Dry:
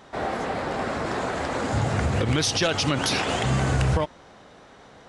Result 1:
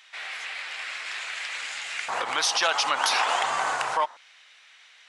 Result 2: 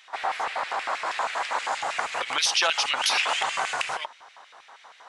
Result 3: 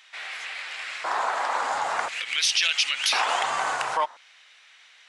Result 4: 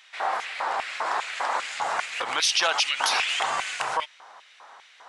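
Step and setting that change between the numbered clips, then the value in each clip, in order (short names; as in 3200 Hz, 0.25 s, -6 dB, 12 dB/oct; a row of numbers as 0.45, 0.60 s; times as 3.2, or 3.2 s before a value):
LFO high-pass, rate: 0.24, 6.3, 0.48, 2.5 Hz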